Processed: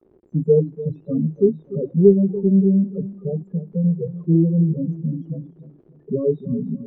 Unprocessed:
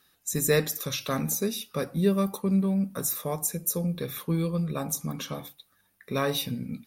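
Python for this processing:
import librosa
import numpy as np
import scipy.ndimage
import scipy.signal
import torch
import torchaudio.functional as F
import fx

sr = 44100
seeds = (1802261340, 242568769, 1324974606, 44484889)

p1 = fx.peak_eq(x, sr, hz=160.0, db=4.0, octaves=0.28)
p2 = fx.spec_topn(p1, sr, count=4)
p3 = fx.dmg_crackle(p2, sr, seeds[0], per_s=160.0, level_db=-37.0)
p4 = 10.0 ** (-24.0 / 20.0) * np.tanh(p3 / 10.0 ** (-24.0 / 20.0))
p5 = p3 + (p4 * 10.0 ** (-6.0 / 20.0))
p6 = fx.lowpass_res(p5, sr, hz=370.0, q=4.6)
p7 = fx.echo_feedback(p6, sr, ms=293, feedback_pct=38, wet_db=-15)
y = p7 * 10.0 ** (3.0 / 20.0)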